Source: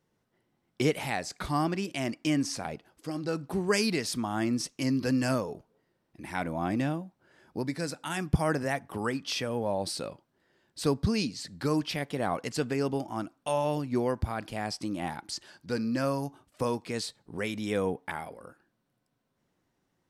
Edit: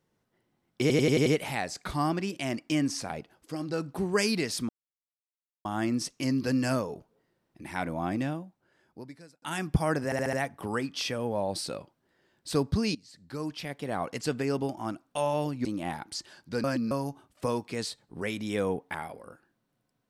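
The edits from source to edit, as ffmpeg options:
-filter_complex "[0:a]asplit=16[a][b][c][d][e][f][g][h][i][j][k][l][m][n][o][p];[a]atrim=end=0.902[q];[b]atrim=start=0.808:end=0.902[r];[c]atrim=start=0.808:end=0.902[s];[d]atrim=start=0.808:end=0.902[t];[e]atrim=start=0.808:end=0.902[u];[f]atrim=start=0.808:end=4.24,asetpts=PTS-STARTPTS,afade=t=out:st=3.428:d=0.004:c=hsin,apad=pad_dur=0.96[v];[g]atrim=start=4.24:end=8.01,asetpts=PTS-STARTPTS,afade=t=in:d=0.004:c=hsin,afade=t=out:st=2.33:d=1.44[w];[h]atrim=start=8.01:end=8.712,asetpts=PTS-STARTPTS,afade=t=in:d=0.004:c=hsin[x];[i]atrim=start=8.638:end=8.712[y];[j]atrim=start=8.638:end=8.712[z];[k]atrim=start=8.638:end=8.712[aa];[l]atrim=start=8.638:end=11.26,asetpts=PTS-STARTPTS,afade=t=out:st=2.618:d=0.004:c=hsin:silence=0.11885[ab];[m]atrim=start=11.26:end=13.962,asetpts=PTS-STARTPTS,afade=t=in:d=1.32:silence=0.11885[ac];[n]atrim=start=14.818:end=15.812[ad];[o]atrim=start=15.808:end=16.082,asetpts=PTS-STARTPTS,areverse[ae];[p]atrim=start=16.078[af];[q][r]acrossfade=d=0.004:c1=hsin:c2=hsin[ag];[ag][s]acrossfade=d=0.004:c1=hsin:c2=hsin[ah];[ah][t]acrossfade=d=0.004:c1=hsin:c2=hsin[ai];[ai][u]acrossfade=d=0.004:c1=hsin:c2=hsin[aj];[v][w][x]concat=n=3:v=0:a=1[ak];[aj][ak]acrossfade=d=0.004:c1=hsin:c2=hsin[al];[al][y]acrossfade=d=0.004:c1=hsin:c2=hsin[am];[am][z]acrossfade=d=0.004:c1=hsin:c2=hsin[an];[an][aa]acrossfade=d=0.004:c1=hsin:c2=hsin[ao];[ab][ac]concat=n=2:v=0:a=1[ap];[ao][ap]acrossfade=d=0.004:c1=hsin:c2=hsin[aq];[aq][ad]acrossfade=d=0.004:c1=hsin:c2=hsin[ar];[ar][ae]acrossfade=d=0.004:c1=hsin:c2=hsin[as];[as][af]acrossfade=d=0.004:c1=hsin:c2=hsin"

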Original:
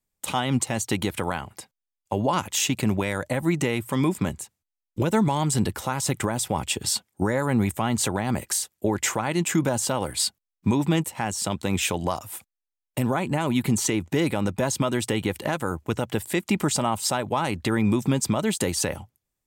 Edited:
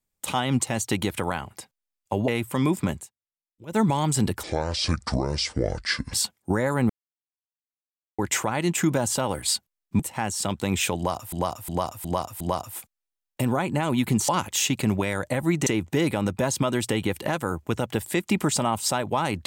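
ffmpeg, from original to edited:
-filter_complex "[0:a]asplit=15[a][b][c][d][e][f][g][h][i][j][k][l][m][n][o];[a]atrim=end=2.282[p];[b]atrim=start=3.658:end=4.49,asetpts=PTS-STARTPTS,afade=t=out:st=0.692:d=0.14:silence=0.0707946[q];[c]atrim=start=4.49:end=5.04,asetpts=PTS-STARTPTS,volume=-23dB[r];[d]atrim=start=5.04:end=5.814,asetpts=PTS-STARTPTS,afade=t=in:d=0.14:silence=0.0707946[s];[e]atrim=start=5.81:end=6.85,asetpts=PTS-STARTPTS,asetrate=26901,aresample=44100[t];[f]atrim=start=6.846:end=7.61,asetpts=PTS-STARTPTS,afade=t=out:st=0.76:d=0.004:c=hsin[u];[g]atrim=start=7.61:end=8.9,asetpts=PTS-STARTPTS,volume=0[v];[h]atrim=start=8.9:end=10.712,asetpts=PTS-STARTPTS,afade=t=in:d=0.004:c=hsin[w];[i]atrim=start=11.008:end=12.342[x];[j]atrim=start=11.978:end=12.342[y];[k]atrim=start=11.978:end=12.342[z];[l]atrim=start=11.978:end=12.342[aa];[m]atrim=start=11.978:end=13.862[ab];[n]atrim=start=2.278:end=3.662[ac];[o]atrim=start=13.858[ad];[q][r][s]concat=n=3:v=0:a=1[ae];[p][ae]acrossfade=d=0.004:c1=hsin:c2=hsin[af];[af][t]acrossfade=d=0.004:c1=hsin:c2=hsin[ag];[u][v][w]concat=n=3:v=0:a=1[ah];[ag][ah]acrossfade=d=0.004:c1=hsin:c2=hsin[ai];[ai][x]acrossfade=d=0.004:c1=hsin:c2=hsin[aj];[aj][y]acrossfade=d=0.004:c1=hsin:c2=hsin[ak];[ak][z]acrossfade=d=0.004:c1=hsin:c2=hsin[al];[al][aa]acrossfade=d=0.004:c1=hsin:c2=hsin[am];[am][ab]acrossfade=d=0.004:c1=hsin:c2=hsin[an];[an][ac]acrossfade=d=0.004:c1=hsin:c2=hsin[ao];[ao][ad]acrossfade=d=0.004:c1=hsin:c2=hsin"

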